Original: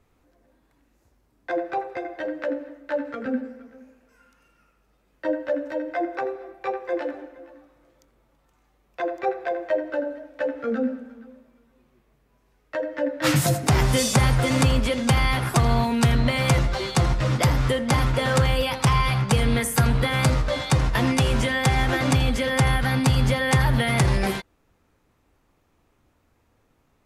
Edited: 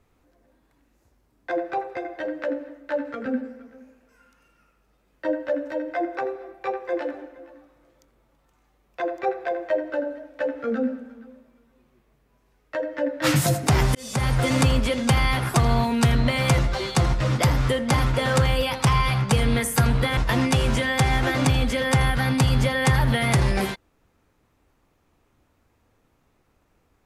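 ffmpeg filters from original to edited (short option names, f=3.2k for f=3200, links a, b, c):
-filter_complex "[0:a]asplit=3[a][b][c];[a]atrim=end=13.95,asetpts=PTS-STARTPTS,afade=t=out:st=13.946:d=0.004:c=hsin[d];[b]atrim=start=13.95:end=20.172,asetpts=PTS-STARTPTS,afade=t=in:d=0.47[e];[c]atrim=start=20.828[f];[d][e]concat=n=2:v=0:a=1[g];[g][f]acrossfade=d=0.004:c1=hsin:c2=hsin"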